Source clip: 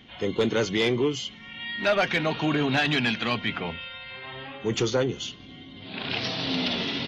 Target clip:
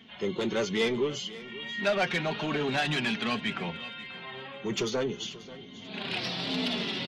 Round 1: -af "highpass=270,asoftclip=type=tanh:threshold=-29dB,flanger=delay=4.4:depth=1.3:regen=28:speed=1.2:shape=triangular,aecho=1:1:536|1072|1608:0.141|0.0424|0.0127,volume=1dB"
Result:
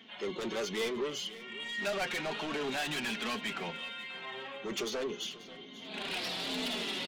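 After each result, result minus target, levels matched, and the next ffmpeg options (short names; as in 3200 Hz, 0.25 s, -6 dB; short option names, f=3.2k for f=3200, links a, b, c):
soft clip: distortion +11 dB; 125 Hz band -7.0 dB
-af "highpass=270,asoftclip=type=tanh:threshold=-18dB,flanger=delay=4.4:depth=1.3:regen=28:speed=1.2:shape=triangular,aecho=1:1:536|1072|1608:0.141|0.0424|0.0127,volume=1dB"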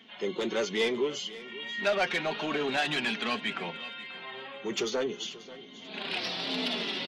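125 Hz band -8.5 dB
-af "highpass=89,asoftclip=type=tanh:threshold=-18dB,flanger=delay=4.4:depth=1.3:regen=28:speed=1.2:shape=triangular,aecho=1:1:536|1072|1608:0.141|0.0424|0.0127,volume=1dB"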